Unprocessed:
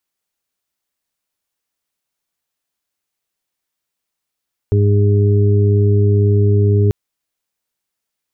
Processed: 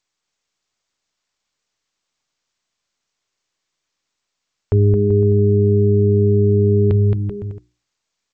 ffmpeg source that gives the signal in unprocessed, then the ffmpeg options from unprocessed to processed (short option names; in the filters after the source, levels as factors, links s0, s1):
-f lavfi -i "aevalsrc='0.316*sin(2*PI*102*t)+0.0708*sin(2*PI*204*t)+0.0562*sin(2*PI*306*t)+0.126*sin(2*PI*408*t)':d=2.19:s=44100"
-af "bandreject=f=60:t=h:w=6,bandreject=f=120:t=h:w=6,bandreject=f=180:t=h:w=6,bandreject=f=240:t=h:w=6,bandreject=f=300:t=h:w=6,bandreject=f=360:t=h:w=6,aecho=1:1:220|385|508.8|601.6|671.2:0.631|0.398|0.251|0.158|0.1" -ar 16000 -c:a g722